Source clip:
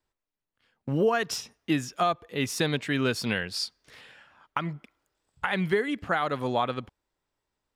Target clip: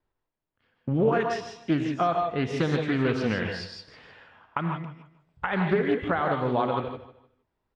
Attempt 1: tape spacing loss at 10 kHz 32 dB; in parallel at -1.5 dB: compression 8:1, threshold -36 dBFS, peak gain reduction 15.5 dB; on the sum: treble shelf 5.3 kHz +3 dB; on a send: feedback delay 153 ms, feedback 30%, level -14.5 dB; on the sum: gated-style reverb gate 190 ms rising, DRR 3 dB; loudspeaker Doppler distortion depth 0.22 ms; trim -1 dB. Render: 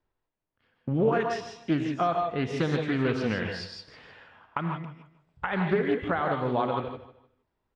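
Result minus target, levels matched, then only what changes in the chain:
compression: peak gain reduction +6 dB
change: compression 8:1, threshold -29 dBFS, peak gain reduction 9.5 dB

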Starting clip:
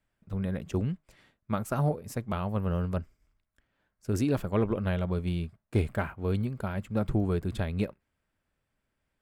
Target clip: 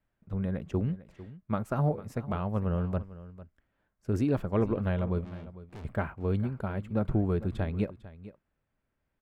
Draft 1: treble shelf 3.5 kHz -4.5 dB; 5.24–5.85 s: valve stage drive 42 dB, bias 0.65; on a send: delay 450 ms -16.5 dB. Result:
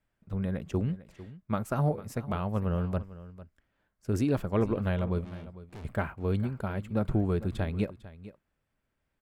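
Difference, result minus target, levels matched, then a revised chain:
8 kHz band +7.5 dB
treble shelf 3.5 kHz -13.5 dB; 5.24–5.85 s: valve stage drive 42 dB, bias 0.65; on a send: delay 450 ms -16.5 dB

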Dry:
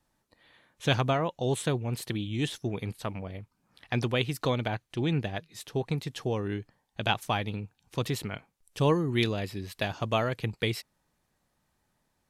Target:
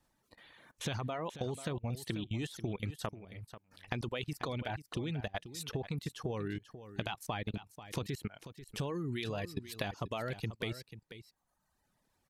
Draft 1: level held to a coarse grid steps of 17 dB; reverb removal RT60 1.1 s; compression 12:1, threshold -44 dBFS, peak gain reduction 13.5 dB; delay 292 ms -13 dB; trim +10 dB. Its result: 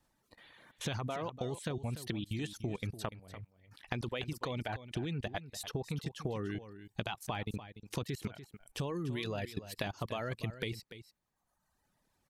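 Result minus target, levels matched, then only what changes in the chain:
echo 197 ms early
change: delay 489 ms -13 dB

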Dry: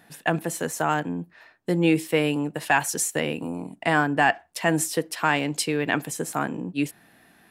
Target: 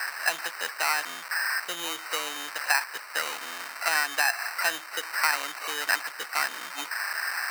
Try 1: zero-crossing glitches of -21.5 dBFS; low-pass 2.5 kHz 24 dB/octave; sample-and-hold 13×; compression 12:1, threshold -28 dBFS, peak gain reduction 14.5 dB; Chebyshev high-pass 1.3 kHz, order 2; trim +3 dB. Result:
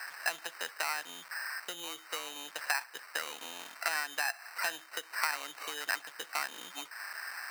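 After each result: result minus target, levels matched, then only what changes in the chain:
compression: peak gain reduction +8.5 dB; zero-crossing glitches: distortion -11 dB
change: compression 12:1, threshold -18.5 dBFS, peak gain reduction 6 dB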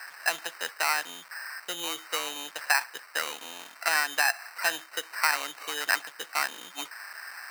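zero-crossing glitches: distortion -11 dB
change: zero-crossing glitches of -10 dBFS

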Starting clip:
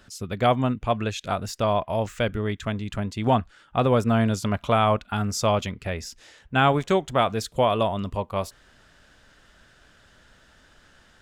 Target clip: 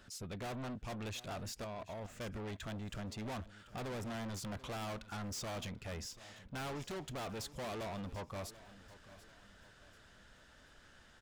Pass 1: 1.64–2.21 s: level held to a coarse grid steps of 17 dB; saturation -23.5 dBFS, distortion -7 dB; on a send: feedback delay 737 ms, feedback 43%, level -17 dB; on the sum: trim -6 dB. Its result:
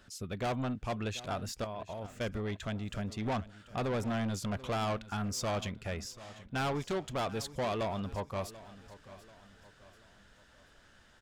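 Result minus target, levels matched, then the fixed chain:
saturation: distortion -5 dB
1.64–2.21 s: level held to a coarse grid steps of 17 dB; saturation -34.5 dBFS, distortion -2 dB; on a send: feedback delay 737 ms, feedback 43%, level -17 dB; on the sum: trim -6 dB

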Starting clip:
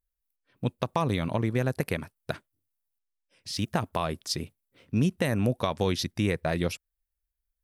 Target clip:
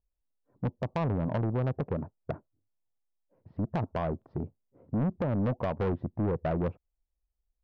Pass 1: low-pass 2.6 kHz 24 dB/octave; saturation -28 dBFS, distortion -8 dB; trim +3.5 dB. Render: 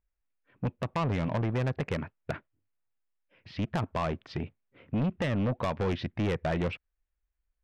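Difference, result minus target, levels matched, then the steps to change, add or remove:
2 kHz band +7.0 dB
change: low-pass 900 Hz 24 dB/octave

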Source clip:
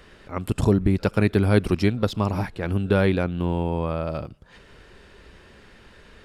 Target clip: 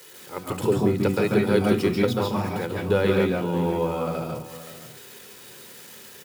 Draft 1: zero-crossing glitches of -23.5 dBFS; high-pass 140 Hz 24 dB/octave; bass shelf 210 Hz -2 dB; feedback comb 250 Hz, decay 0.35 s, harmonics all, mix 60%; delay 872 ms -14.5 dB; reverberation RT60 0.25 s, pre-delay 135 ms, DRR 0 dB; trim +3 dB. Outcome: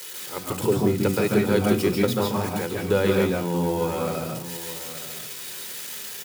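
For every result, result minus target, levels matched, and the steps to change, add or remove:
echo 350 ms late; zero-crossing glitches: distortion +10 dB
change: delay 522 ms -14.5 dB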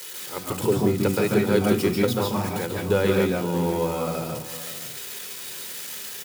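zero-crossing glitches: distortion +10 dB
change: zero-crossing glitches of -34 dBFS

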